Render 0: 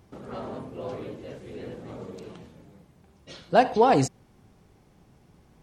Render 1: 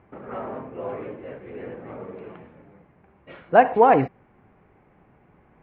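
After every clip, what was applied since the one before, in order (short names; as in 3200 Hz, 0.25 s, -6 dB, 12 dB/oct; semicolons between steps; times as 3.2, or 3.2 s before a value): steep low-pass 2400 Hz 36 dB/oct; low shelf 290 Hz -9.5 dB; gain +6 dB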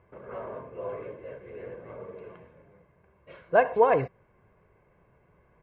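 comb 1.9 ms, depth 58%; gain -6.5 dB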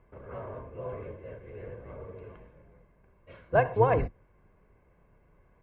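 octaver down 2 oct, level +4 dB; gain -3 dB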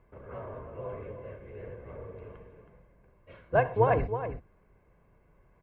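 outdoor echo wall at 55 m, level -9 dB; gain -1 dB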